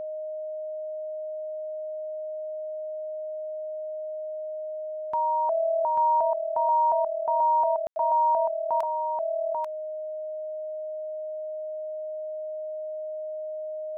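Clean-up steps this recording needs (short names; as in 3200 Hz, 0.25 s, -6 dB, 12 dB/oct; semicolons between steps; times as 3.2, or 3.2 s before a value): notch 620 Hz, Q 30; room tone fill 7.87–7.96; inverse comb 0.84 s -4 dB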